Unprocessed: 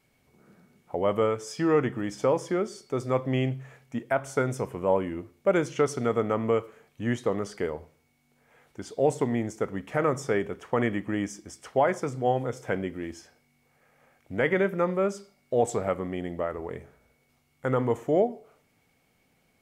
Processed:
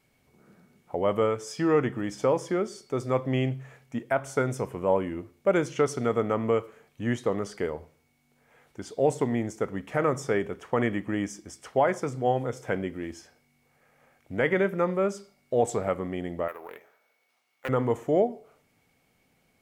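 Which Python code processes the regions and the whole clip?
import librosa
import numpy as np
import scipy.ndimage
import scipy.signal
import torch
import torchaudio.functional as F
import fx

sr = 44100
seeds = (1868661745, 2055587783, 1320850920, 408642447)

y = fx.chain(x, sr, fx.highpass(hz=660.0, slope=12),
    fx.resample_bad(factor=3, down='filtered', up='hold'),
    fx.doppler_dist(depth_ms=0.31), at=(16.48, 17.69))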